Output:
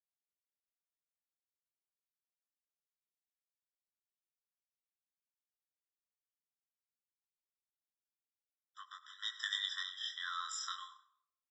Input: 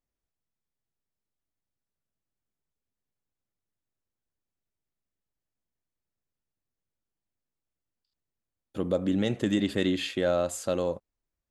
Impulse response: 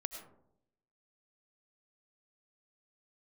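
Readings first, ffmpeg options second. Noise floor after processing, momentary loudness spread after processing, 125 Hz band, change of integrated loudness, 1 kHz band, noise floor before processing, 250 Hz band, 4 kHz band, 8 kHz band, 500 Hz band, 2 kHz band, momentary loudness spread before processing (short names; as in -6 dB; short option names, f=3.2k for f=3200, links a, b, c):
under -85 dBFS, 17 LU, under -40 dB, -11.0 dB, -6.5 dB, under -85 dBFS, under -40 dB, -1.0 dB, -6.5 dB, under -40 dB, -5.0 dB, 8 LU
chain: -filter_complex "[0:a]acrossover=split=6100[a][b];[b]acompressor=threshold=-53dB:ratio=4:attack=1:release=60[c];[a][c]amix=inputs=2:normalize=0,acrossover=split=470[d][e];[d]aeval=exprs='val(0)*(1-0.7/2+0.7/2*cos(2*PI*1*n/s))':c=same[f];[e]aeval=exprs='val(0)*(1-0.7/2-0.7/2*cos(2*PI*1*n/s))':c=same[g];[f][g]amix=inputs=2:normalize=0,volume=21dB,asoftclip=hard,volume=-21dB,aresample=16000,aresample=44100,equalizer=f=5.1k:t=o:w=0.69:g=12.5,agate=range=-33dB:threshold=-36dB:ratio=3:detection=peak,acrossover=split=120[h][i];[i]acompressor=threshold=-45dB:ratio=2[j];[h][j]amix=inputs=2:normalize=0,flanger=delay=18.5:depth=7.9:speed=0.23,asplit=4[k][l][m][n];[l]adelay=105,afreqshift=61,volume=-23.5dB[o];[m]adelay=210,afreqshift=122,volume=-31.7dB[p];[n]adelay=315,afreqshift=183,volume=-39.9dB[q];[k][o][p][q]amix=inputs=4:normalize=0,asplit=2[r][s];[1:a]atrim=start_sample=2205[t];[s][t]afir=irnorm=-1:irlink=0,volume=-5.5dB[u];[r][u]amix=inputs=2:normalize=0,afftfilt=real='re*eq(mod(floor(b*sr/1024/1000),2),1)':imag='im*eq(mod(floor(b*sr/1024/1000),2),1)':win_size=1024:overlap=0.75,volume=9.5dB"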